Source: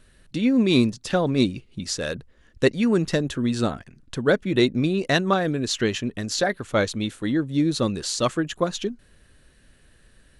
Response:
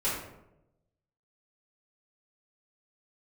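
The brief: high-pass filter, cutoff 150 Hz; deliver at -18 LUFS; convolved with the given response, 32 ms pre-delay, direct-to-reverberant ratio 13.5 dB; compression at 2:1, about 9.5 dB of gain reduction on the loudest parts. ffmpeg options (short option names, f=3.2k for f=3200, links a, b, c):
-filter_complex "[0:a]highpass=150,acompressor=threshold=-32dB:ratio=2,asplit=2[a][b];[1:a]atrim=start_sample=2205,adelay=32[c];[b][c]afir=irnorm=-1:irlink=0,volume=-22dB[d];[a][d]amix=inputs=2:normalize=0,volume=13dB"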